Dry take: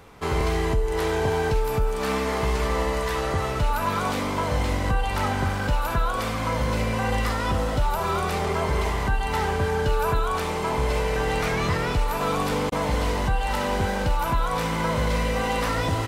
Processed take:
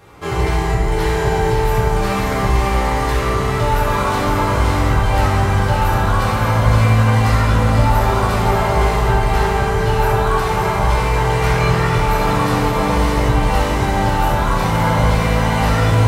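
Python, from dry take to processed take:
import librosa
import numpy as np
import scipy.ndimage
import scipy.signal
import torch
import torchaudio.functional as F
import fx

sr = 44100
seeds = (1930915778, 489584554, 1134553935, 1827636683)

p1 = x + fx.echo_diffused(x, sr, ms=574, feedback_pct=52, wet_db=-4.5, dry=0)
p2 = fx.rev_fdn(p1, sr, rt60_s=1.7, lf_ratio=0.9, hf_ratio=0.5, size_ms=50.0, drr_db=-6.5)
y = p2 * 10.0 ** (-1.0 / 20.0)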